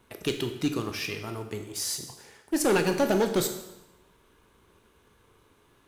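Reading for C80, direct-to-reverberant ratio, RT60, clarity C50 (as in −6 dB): 10.5 dB, 5.5 dB, 0.95 s, 8.5 dB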